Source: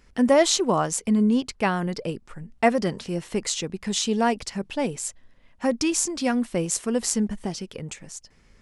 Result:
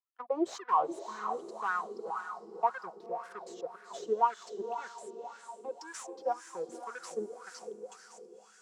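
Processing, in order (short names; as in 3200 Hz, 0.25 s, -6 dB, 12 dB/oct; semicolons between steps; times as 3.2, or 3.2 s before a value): HPF 82 Hz 24 dB/oct; fixed phaser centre 400 Hz, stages 8; spectral gate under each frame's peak -15 dB strong; differentiator; gate -55 dBFS, range -6 dB; in parallel at -9 dB: hard clip -16.5 dBFS, distortion -18 dB; on the sum: high shelf 2300 Hz -11.5 dB; sample leveller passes 5; notch 870 Hz, Q 12; diffused feedback echo 0.506 s, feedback 48%, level -8 dB; wah 1.9 Hz 350–1600 Hz, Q 6.9; gain +8.5 dB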